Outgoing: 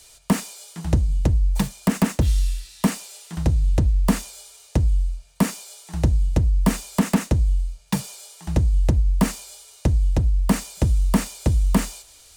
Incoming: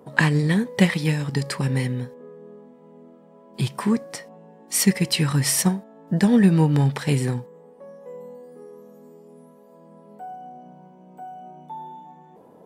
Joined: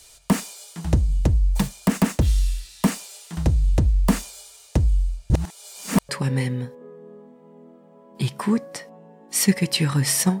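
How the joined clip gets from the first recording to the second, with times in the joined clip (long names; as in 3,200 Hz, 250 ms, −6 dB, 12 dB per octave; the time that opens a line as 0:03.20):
outgoing
0:05.30–0:06.09: reverse
0:06.09: continue with incoming from 0:01.48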